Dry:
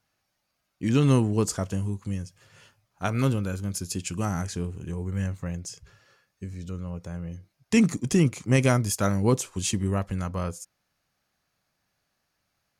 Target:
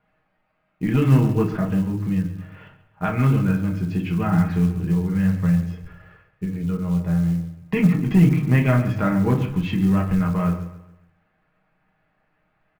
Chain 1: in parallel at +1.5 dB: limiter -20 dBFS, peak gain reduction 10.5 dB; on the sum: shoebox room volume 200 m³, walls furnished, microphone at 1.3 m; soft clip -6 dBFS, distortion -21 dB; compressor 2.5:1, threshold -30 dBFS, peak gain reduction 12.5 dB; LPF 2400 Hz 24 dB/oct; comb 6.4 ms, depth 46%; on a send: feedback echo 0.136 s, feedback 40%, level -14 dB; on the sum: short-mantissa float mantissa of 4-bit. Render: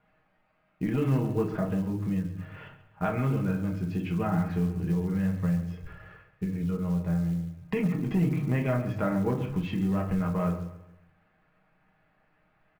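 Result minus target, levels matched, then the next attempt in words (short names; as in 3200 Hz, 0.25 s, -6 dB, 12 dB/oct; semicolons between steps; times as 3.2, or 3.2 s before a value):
compressor: peak gain reduction +12.5 dB; 500 Hz band +4.0 dB
in parallel at +1.5 dB: limiter -20 dBFS, peak gain reduction 10.5 dB; on the sum: shoebox room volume 200 m³, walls furnished, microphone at 1.3 m; soft clip -6 dBFS, distortion -21 dB; LPF 2400 Hz 24 dB/oct; dynamic EQ 550 Hz, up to -7 dB, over -32 dBFS, Q 0.86; comb 6.4 ms, depth 46%; on a send: feedback echo 0.136 s, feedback 40%, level -14 dB; on the sum: short-mantissa float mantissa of 4-bit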